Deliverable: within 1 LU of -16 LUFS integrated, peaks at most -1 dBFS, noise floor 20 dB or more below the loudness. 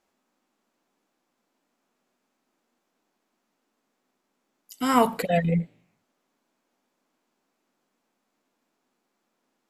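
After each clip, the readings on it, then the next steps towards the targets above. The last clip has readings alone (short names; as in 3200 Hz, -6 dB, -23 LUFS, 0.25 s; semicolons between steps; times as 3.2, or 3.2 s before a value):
loudness -24.0 LUFS; peak -5.5 dBFS; loudness target -16.0 LUFS
-> gain +8 dB; limiter -1 dBFS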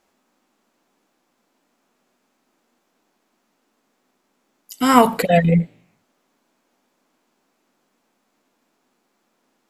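loudness -16.5 LUFS; peak -1.0 dBFS; noise floor -70 dBFS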